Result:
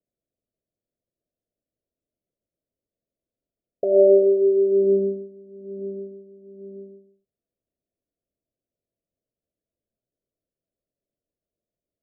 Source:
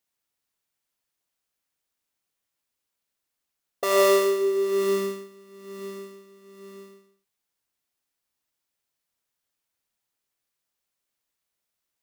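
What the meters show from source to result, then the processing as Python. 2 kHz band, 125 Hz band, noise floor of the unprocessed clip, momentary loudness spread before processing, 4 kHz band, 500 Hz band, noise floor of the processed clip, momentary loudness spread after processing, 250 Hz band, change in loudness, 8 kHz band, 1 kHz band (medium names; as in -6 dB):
under -40 dB, no reading, -83 dBFS, 20 LU, under -40 dB, +5.5 dB, under -85 dBFS, 19 LU, +5.5 dB, +4.5 dB, under -40 dB, under -15 dB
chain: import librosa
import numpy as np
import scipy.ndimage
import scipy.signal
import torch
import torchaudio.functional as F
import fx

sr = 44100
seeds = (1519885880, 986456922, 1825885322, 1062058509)

y = scipy.signal.sosfilt(scipy.signal.butter(16, 680.0, 'lowpass', fs=sr, output='sos'), x)
y = y * librosa.db_to_amplitude(5.5)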